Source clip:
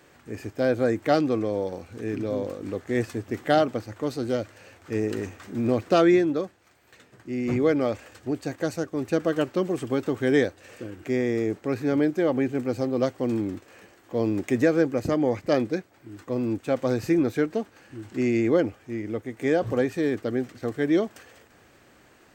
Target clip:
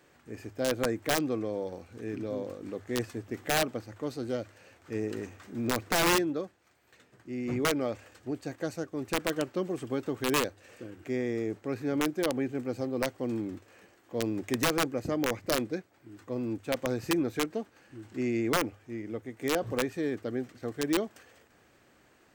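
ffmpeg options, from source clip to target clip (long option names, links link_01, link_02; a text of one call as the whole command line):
ffmpeg -i in.wav -af "bandreject=frequency=50:width_type=h:width=6,bandreject=frequency=100:width_type=h:width=6,aeval=exprs='(mod(4.47*val(0)+1,2)-1)/4.47':channel_layout=same,volume=-6.5dB" out.wav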